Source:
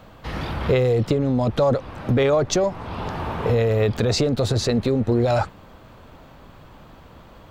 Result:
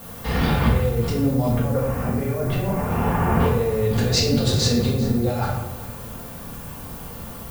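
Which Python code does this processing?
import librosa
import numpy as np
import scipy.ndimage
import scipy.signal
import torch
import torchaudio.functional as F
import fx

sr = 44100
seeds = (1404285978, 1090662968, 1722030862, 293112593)

y = fx.lowpass(x, sr, hz=2400.0, slope=24, at=(1.49, 3.4))
y = fx.over_compress(y, sr, threshold_db=-23.0, ratio=-0.5)
y = fx.dmg_noise_colour(y, sr, seeds[0], colour='violet', level_db=-42.0)
y = fx.notch_comb(y, sr, f0_hz=320.0)
y = y + 10.0 ** (-17.5 / 20.0) * np.pad(y, (int(392 * sr / 1000.0), 0))[:len(y)]
y = fx.room_shoebox(y, sr, seeds[1], volume_m3=260.0, walls='mixed', distance_m=1.7)
y = F.gain(torch.from_numpy(y), -1.5).numpy()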